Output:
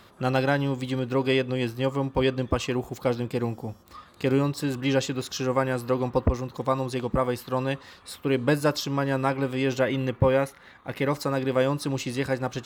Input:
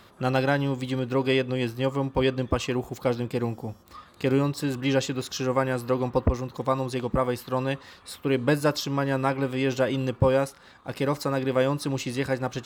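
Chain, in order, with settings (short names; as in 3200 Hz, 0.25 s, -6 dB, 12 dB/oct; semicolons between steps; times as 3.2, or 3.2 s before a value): 9.79–11.11 thirty-one-band EQ 2000 Hz +8 dB, 5000 Hz -8 dB, 8000 Hz -9 dB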